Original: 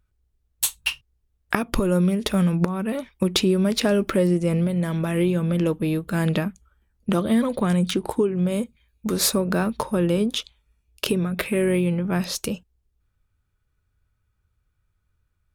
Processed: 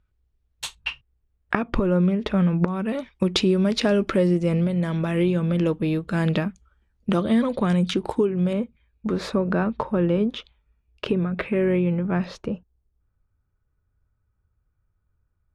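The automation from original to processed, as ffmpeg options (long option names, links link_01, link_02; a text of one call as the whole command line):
ffmpeg -i in.wav -af "asetnsamples=nb_out_samples=441:pad=0,asendcmd='0.75 lowpass f 2500;2.68 lowpass f 5600;8.53 lowpass f 2200;12.38 lowpass f 1300',lowpass=4100" out.wav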